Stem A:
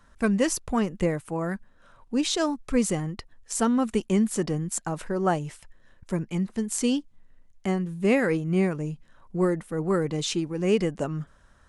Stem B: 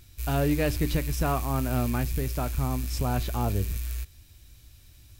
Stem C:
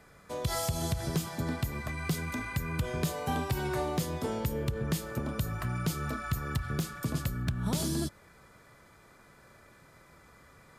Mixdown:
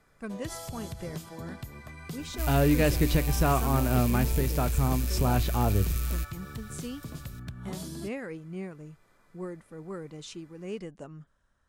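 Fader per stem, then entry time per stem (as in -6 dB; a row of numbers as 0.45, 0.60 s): -14.5, +2.0, -8.5 dB; 0.00, 2.20, 0.00 s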